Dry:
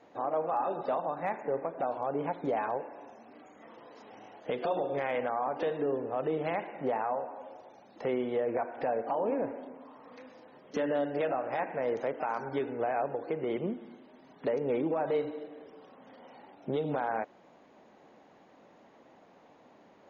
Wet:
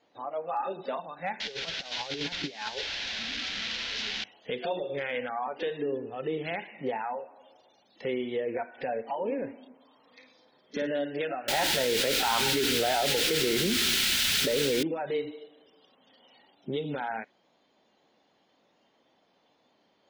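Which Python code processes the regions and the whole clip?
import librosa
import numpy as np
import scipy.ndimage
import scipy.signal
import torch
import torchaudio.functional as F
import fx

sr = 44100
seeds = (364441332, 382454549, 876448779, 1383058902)

y = fx.chain(x, sr, fx.delta_mod(bps=32000, step_db=-35.5),
    fx.high_shelf(hz=2000.0, db=9.0),
    fx.over_compress(threshold_db=-33.0, ratio=-0.5), at=(1.4, 4.24))
y = fx.chain(y, sr, fx.notch(hz=2900.0, q=5.7),
    fx.room_flutter(wall_m=9.1, rt60_s=0.4), at=(10.14, 10.87))
y = fx.chain(y, sr, fx.lowpass(hz=2700.0, slope=24),
    fx.quant_dither(seeds[0], bits=6, dither='triangular'),
    fx.env_flatten(amount_pct=100), at=(11.48, 14.83))
y = fx.peak_eq(y, sr, hz=3500.0, db=11.5, octaves=1.4)
y = fx.noise_reduce_blind(y, sr, reduce_db=11)
y = fx.high_shelf(y, sr, hz=4600.0, db=-7.5)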